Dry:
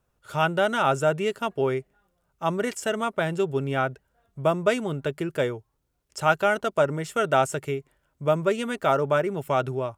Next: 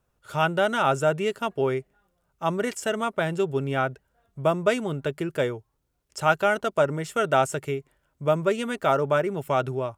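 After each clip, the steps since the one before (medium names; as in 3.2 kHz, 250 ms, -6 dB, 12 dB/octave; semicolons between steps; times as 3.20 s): no audible change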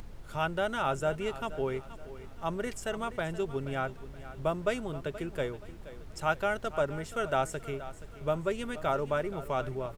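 feedback delay 476 ms, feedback 39%, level -15 dB; added noise brown -37 dBFS; upward compressor, threshold -39 dBFS; trim -8 dB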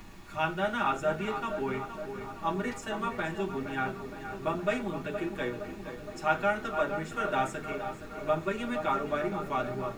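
added noise pink -54 dBFS; filtered feedback delay 466 ms, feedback 75%, low-pass 2.1 kHz, level -10 dB; reverberation RT60 0.30 s, pre-delay 3 ms, DRR -5 dB; trim -5.5 dB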